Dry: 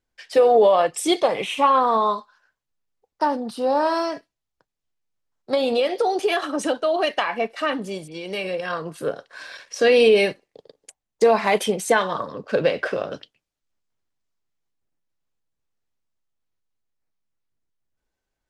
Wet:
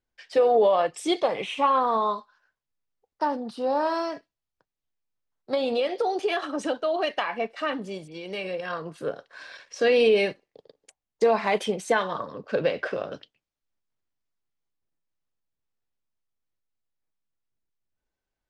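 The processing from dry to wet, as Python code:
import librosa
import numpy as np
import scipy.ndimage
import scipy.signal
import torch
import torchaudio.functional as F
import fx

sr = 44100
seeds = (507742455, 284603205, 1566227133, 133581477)

y = scipy.signal.sosfilt(scipy.signal.bessel(2, 6000.0, 'lowpass', norm='mag', fs=sr, output='sos'), x)
y = y * librosa.db_to_amplitude(-4.5)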